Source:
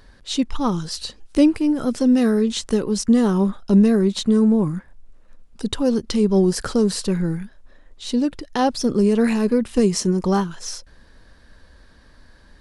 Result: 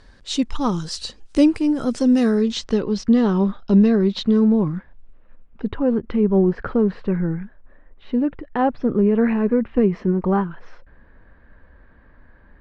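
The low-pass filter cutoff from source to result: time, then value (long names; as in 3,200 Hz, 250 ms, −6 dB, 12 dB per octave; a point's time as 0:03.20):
low-pass filter 24 dB per octave
0:02.18 8,800 Hz
0:02.84 4,600 Hz
0:04.49 4,600 Hz
0:05.78 2,200 Hz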